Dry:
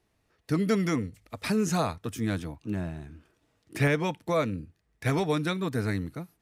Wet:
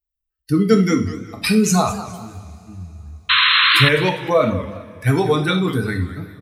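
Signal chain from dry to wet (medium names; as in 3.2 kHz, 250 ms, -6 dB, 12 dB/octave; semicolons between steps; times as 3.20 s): expander on every frequency bin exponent 2; in parallel at -2.5 dB: compressor with a negative ratio -40 dBFS, ratio -1; 1.89–3.06 s: on the sum: amplifier tone stack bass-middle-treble 10-0-1; speakerphone echo 360 ms, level -22 dB; on a send at -3 dB: reverberation, pre-delay 3 ms; 3.29–3.89 s: on the sum: painted sound noise 1–4.2 kHz -25 dBFS; loudness maximiser +12.5 dB; modulated delay 203 ms, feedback 32%, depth 184 cents, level -14 dB; trim -1.5 dB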